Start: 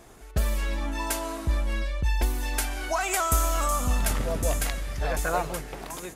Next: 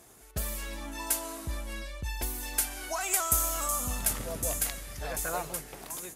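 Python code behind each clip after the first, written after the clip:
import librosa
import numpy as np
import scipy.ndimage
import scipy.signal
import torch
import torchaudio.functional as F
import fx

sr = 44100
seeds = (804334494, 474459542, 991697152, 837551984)

y = scipy.signal.sosfilt(scipy.signal.butter(2, 56.0, 'highpass', fs=sr, output='sos'), x)
y = fx.peak_eq(y, sr, hz=13000.0, db=12.5, octaves=1.7)
y = y * 10.0 ** (-7.5 / 20.0)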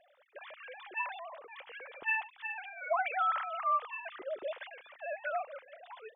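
y = fx.sine_speech(x, sr)
y = y * 10.0 ** (-4.5 / 20.0)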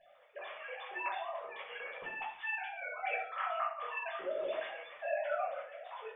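y = fx.over_compress(x, sr, threshold_db=-36.0, ratio=-0.5)
y = fx.room_shoebox(y, sr, seeds[0], volume_m3=730.0, walls='furnished', distance_m=5.8)
y = y * 10.0 ** (-7.5 / 20.0)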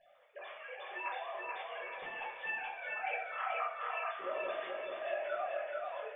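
y = fx.echo_feedback(x, sr, ms=432, feedback_pct=46, wet_db=-3)
y = y * 10.0 ** (-2.5 / 20.0)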